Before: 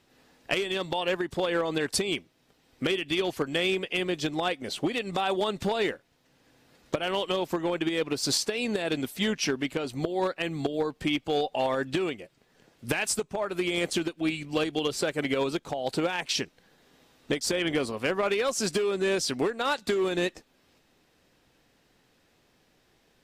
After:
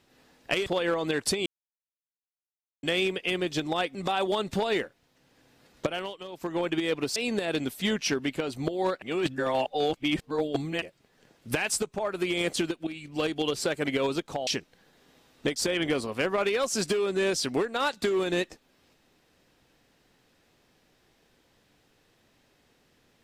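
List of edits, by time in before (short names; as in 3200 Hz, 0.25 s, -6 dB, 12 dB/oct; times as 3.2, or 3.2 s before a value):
0.66–1.33 cut
2.13–3.5 mute
4.62–5.04 cut
6.95–7.69 dip -13 dB, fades 0.28 s
8.25–8.53 cut
10.39–12.19 reverse
14.24–14.67 fade in, from -14.5 dB
15.84–16.32 cut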